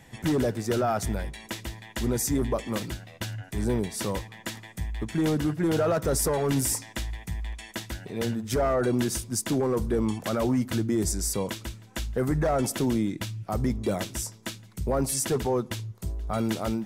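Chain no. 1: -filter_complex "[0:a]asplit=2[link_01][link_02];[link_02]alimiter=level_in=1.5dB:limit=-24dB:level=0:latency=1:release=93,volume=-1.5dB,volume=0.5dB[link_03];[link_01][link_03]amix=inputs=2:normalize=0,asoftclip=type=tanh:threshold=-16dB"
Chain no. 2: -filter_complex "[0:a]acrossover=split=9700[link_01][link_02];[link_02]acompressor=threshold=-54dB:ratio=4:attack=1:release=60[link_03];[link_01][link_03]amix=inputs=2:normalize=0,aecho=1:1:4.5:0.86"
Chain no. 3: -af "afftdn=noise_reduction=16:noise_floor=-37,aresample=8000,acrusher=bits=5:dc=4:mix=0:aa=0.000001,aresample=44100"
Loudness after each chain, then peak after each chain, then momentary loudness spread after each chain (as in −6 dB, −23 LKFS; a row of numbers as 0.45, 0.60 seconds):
−26.5, −26.0, −27.5 LKFS; −17.5, −12.0, −14.5 dBFS; 8, 12, 17 LU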